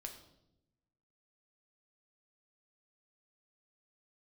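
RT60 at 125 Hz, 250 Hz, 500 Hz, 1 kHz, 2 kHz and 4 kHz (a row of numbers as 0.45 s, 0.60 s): 1.4 s, 1.3 s, 1.0 s, 0.70 s, 0.60 s, 0.70 s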